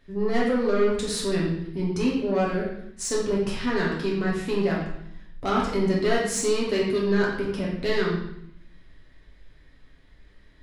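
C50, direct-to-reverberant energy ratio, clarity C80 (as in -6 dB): 2.5 dB, -5.0 dB, 5.5 dB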